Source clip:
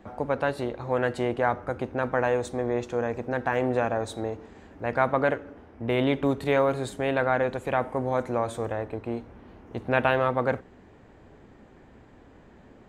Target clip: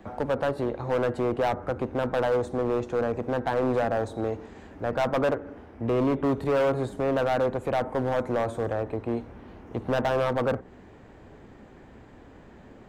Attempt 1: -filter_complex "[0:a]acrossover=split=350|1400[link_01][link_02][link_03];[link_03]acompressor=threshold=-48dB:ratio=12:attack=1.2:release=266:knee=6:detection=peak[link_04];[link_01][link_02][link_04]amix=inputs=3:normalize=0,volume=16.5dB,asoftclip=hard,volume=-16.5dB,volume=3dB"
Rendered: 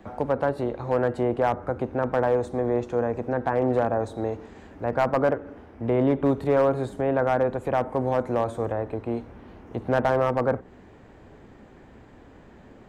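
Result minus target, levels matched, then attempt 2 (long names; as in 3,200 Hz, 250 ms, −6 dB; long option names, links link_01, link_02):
gain into a clipping stage and back: distortion −10 dB
-filter_complex "[0:a]acrossover=split=350|1400[link_01][link_02][link_03];[link_03]acompressor=threshold=-48dB:ratio=12:attack=1.2:release=266:knee=6:detection=peak[link_04];[link_01][link_02][link_04]amix=inputs=3:normalize=0,volume=23dB,asoftclip=hard,volume=-23dB,volume=3dB"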